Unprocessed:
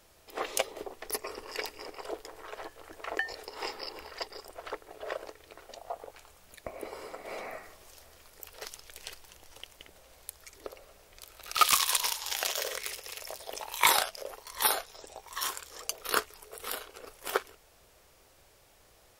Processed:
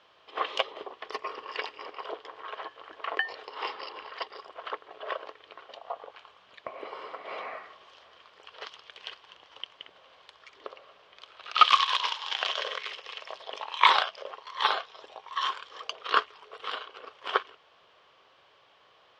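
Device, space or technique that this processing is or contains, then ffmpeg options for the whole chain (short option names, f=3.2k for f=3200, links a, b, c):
kitchen radio: -af "highpass=200,equalizer=f=220:t=q:w=4:g=-7,equalizer=f=330:t=q:w=4:g=-4,equalizer=f=1.1k:t=q:w=4:g=10,equalizer=f=1.6k:t=q:w=4:g=3,equalizer=f=3.1k:t=q:w=4:g=9,lowpass=f=4.2k:w=0.5412,lowpass=f=4.2k:w=1.3066"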